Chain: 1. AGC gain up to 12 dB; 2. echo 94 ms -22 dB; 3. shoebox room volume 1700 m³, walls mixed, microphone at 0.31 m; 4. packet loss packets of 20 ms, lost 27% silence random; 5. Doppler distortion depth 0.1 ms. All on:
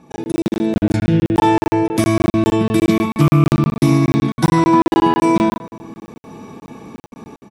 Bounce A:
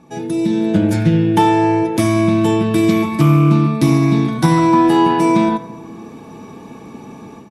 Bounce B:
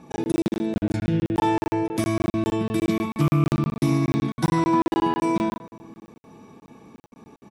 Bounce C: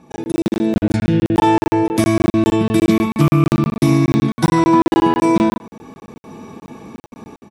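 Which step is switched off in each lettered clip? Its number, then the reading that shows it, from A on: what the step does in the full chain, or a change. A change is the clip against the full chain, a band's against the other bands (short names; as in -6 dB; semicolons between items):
4, loudness change +1.0 LU; 1, loudness change -8.0 LU; 3, momentary loudness spread change -2 LU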